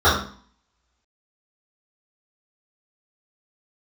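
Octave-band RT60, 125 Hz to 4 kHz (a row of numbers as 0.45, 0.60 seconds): 0.55, 0.55, 0.45, 0.45, 0.45, 0.45 seconds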